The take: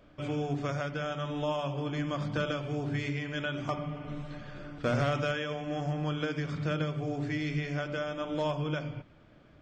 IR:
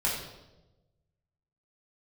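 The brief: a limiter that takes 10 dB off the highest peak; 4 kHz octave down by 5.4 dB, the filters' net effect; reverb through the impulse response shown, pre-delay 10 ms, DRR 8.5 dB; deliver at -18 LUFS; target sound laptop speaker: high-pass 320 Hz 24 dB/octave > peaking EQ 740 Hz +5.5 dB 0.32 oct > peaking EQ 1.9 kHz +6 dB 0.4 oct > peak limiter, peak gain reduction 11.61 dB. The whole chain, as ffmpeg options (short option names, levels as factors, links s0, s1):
-filter_complex "[0:a]equalizer=f=4000:t=o:g=-8,alimiter=level_in=2.24:limit=0.0631:level=0:latency=1,volume=0.447,asplit=2[s0][s1];[1:a]atrim=start_sample=2205,adelay=10[s2];[s1][s2]afir=irnorm=-1:irlink=0,volume=0.141[s3];[s0][s3]amix=inputs=2:normalize=0,highpass=f=320:w=0.5412,highpass=f=320:w=1.3066,equalizer=f=740:t=o:w=0.32:g=5.5,equalizer=f=1900:t=o:w=0.4:g=6,volume=25.1,alimiter=limit=0.316:level=0:latency=1"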